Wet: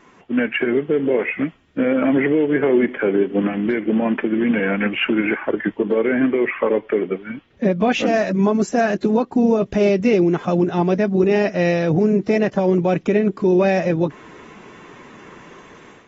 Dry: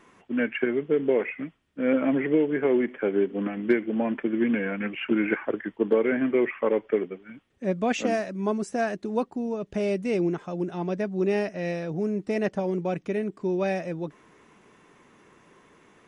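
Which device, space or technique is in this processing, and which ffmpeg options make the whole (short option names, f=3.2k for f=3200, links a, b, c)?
low-bitrate web radio: -filter_complex "[0:a]asettb=1/sr,asplit=3[a][b][c];[a]atrim=end=6.214[d];[b]atrim=start=6.21:end=8.06,asetpts=PTS-STARTPTS,afade=t=in:d=0.004:c=qsin,afade=t=out:st=1.846:d=0.004:c=qsin,lowpass=f=5.8k:w=0.5412,lowpass=f=5.8k:w=1.3066[e];[c]atrim=start=8.056[f];[d][e]acrossfade=d=0.004:c1=hsin:c2=qsin[g];[g][f]acrossfade=d=0.004:c1=qsin:c2=hsin,dynaudnorm=f=300:g=3:m=9dB,alimiter=limit=-14.5dB:level=0:latency=1:release=201,volume=5dB" -ar 44100 -c:a aac -b:a 24k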